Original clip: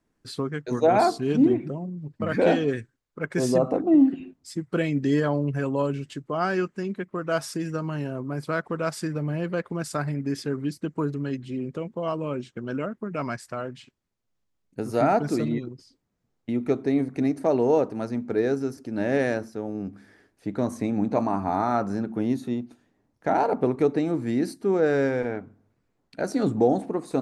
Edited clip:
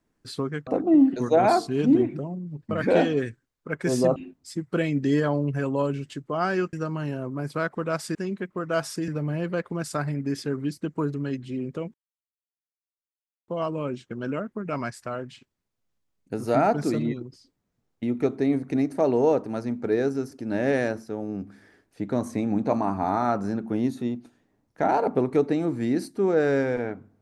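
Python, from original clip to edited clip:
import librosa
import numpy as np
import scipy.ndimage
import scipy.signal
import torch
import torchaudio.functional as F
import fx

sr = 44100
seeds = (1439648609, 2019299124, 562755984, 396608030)

y = fx.edit(x, sr, fx.move(start_s=3.67, length_s=0.49, to_s=0.67),
    fx.move(start_s=6.73, length_s=0.93, to_s=9.08),
    fx.insert_silence(at_s=11.94, length_s=1.54), tone=tone)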